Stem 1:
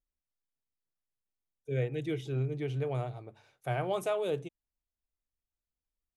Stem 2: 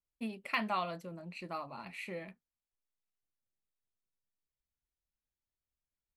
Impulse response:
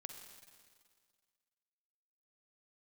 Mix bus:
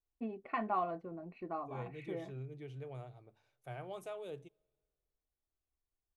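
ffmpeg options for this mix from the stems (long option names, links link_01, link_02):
-filter_complex "[0:a]volume=-13.5dB,asplit=2[link_01][link_02];[link_02]volume=-22dB[link_03];[1:a]lowpass=1000,aecho=1:1:2.7:0.5,volume=1.5dB[link_04];[2:a]atrim=start_sample=2205[link_05];[link_03][link_05]afir=irnorm=-1:irlink=0[link_06];[link_01][link_04][link_06]amix=inputs=3:normalize=0"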